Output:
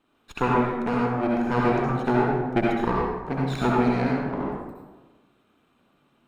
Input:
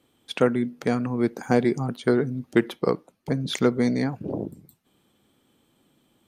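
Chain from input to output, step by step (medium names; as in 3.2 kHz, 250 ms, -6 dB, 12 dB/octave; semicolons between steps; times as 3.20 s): comb filter that takes the minimum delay 0.75 ms; tone controls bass -9 dB, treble -15 dB; reverberation RT60 1.3 s, pre-delay 58 ms, DRR -4 dB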